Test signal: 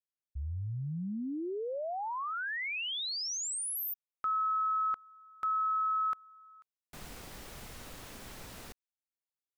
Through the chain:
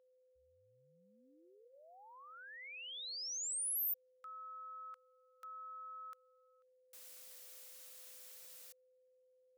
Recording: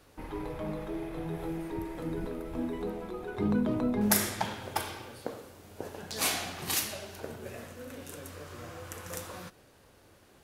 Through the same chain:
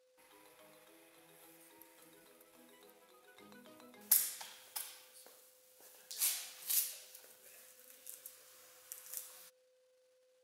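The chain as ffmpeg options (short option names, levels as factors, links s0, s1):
-af "aeval=exprs='val(0)+0.00794*sin(2*PI*510*n/s)':c=same,anlmdn=0.000398,aderivative,volume=0.596"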